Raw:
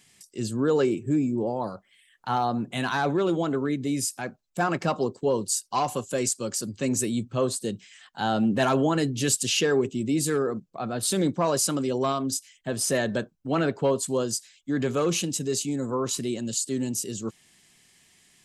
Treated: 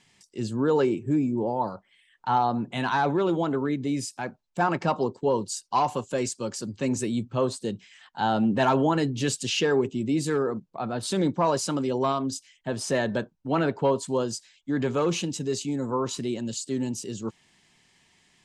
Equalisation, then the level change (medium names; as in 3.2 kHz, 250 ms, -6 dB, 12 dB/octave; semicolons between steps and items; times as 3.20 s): distance through air 78 m; peaking EQ 910 Hz +8 dB 0.24 oct; 0.0 dB